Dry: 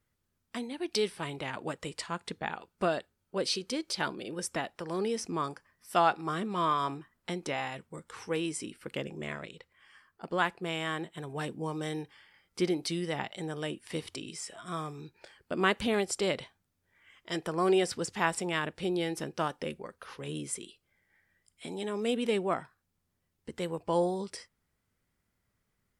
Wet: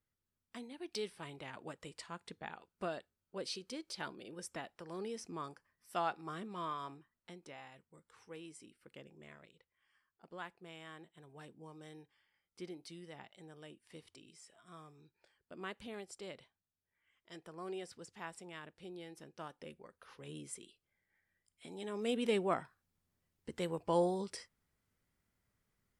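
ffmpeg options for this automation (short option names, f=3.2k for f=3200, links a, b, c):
-af "volume=3.5dB,afade=t=out:st=6.37:d=1.06:silence=0.446684,afade=t=in:st=19.23:d=1.08:silence=0.421697,afade=t=in:st=21.69:d=0.63:silence=0.446684"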